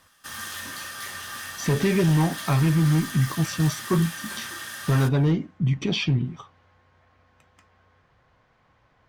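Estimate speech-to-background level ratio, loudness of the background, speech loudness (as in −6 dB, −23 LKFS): 10.5 dB, −34.0 LKFS, −23.5 LKFS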